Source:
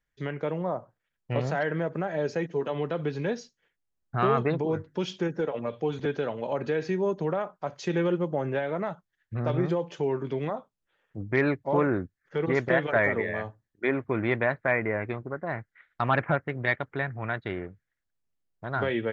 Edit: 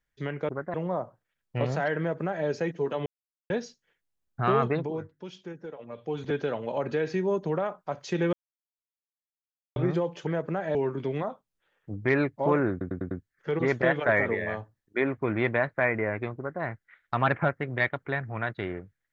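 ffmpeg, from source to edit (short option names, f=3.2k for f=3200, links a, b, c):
-filter_complex "[0:a]asplit=15[a][b][c][d][e][f][g][h][i][j][k][l][m][n][o];[a]atrim=end=0.492[p];[b]atrim=start=15.238:end=15.492[q];[c]atrim=start=0.488:end=2.81,asetpts=PTS-STARTPTS,afade=t=out:st=2.318:d=0.004:c=hsin[r];[d]atrim=start=2.81:end=3.25,asetpts=PTS-STARTPTS,volume=0[s];[e]atrim=start=3.25:end=4.88,asetpts=PTS-STARTPTS,afade=t=in:d=0.004:c=hsin,afade=t=out:st=1.15:d=0.48:silence=0.266073[t];[f]atrim=start=4.88:end=5.61,asetpts=PTS-STARTPTS,volume=-11.5dB[u];[g]atrim=start=5.61:end=8.08,asetpts=PTS-STARTPTS,afade=t=in:d=0.48:silence=0.266073,afade=t=out:st=2.466:d=0.004:c=hsin[v];[h]atrim=start=8.08:end=9.51,asetpts=PTS-STARTPTS,volume=0[w];[i]atrim=start=9.51:end=10.022,asetpts=PTS-STARTPTS,afade=t=in:d=0.004:c=hsin[x];[j]atrim=start=1.738:end=2.222[y];[k]atrim=start=10.018:end=12.082[z];[l]atrim=start=11.978:end=12.082[aa];[m]atrim=start=11.978:end=12.082[ab];[n]atrim=start=11.978:end=12.082[ac];[o]atrim=start=11.978[ad];[p][q]acrossfade=d=0.004:c1=hsin:c2=hsin[ae];[r][s][t][u][v][w][x]concat=n=7:v=0:a=1[af];[ae][af]acrossfade=d=0.004:c1=hsin:c2=hsin[ag];[ag][y]acrossfade=d=0.004:c1=hsin:c2=hsin[ah];[ah][z]acrossfade=d=0.004:c1=hsin:c2=hsin[ai];[ai][aa]acrossfade=d=0.004:c1=hsin:c2=hsin[aj];[aj][ab]acrossfade=d=0.004:c1=hsin:c2=hsin[ak];[ak][ac]acrossfade=d=0.004:c1=hsin:c2=hsin[al];[al][ad]acrossfade=d=0.004:c1=hsin:c2=hsin"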